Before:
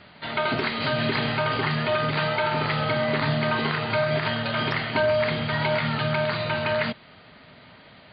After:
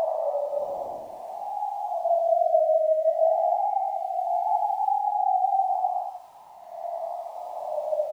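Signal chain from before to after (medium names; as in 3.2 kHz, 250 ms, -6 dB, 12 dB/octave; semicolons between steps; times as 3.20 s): formants replaced by sine waves; elliptic low-pass 730 Hz, stop band 50 dB; comb 1.1 ms, depth 61%; compressor with a negative ratio -28 dBFS, ratio -0.5; crackle 580 per s -51 dBFS; Paulstretch 10×, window 0.10 s, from 2.02 s; trim +3.5 dB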